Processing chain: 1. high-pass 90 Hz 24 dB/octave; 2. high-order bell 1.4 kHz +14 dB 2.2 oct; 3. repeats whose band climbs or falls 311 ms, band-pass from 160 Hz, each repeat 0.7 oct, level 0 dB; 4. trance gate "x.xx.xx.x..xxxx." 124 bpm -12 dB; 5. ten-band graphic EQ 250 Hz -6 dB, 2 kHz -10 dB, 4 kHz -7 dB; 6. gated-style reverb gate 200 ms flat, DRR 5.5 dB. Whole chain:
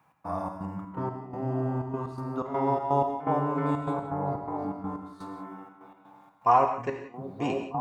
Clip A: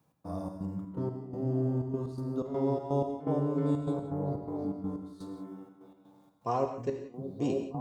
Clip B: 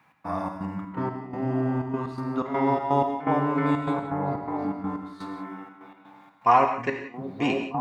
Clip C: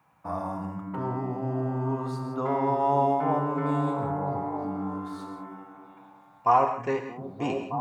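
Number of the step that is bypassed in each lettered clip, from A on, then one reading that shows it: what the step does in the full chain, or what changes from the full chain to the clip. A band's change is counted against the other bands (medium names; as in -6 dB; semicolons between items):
2, 1 kHz band -12.5 dB; 5, momentary loudness spread change -1 LU; 4, loudness change +1.5 LU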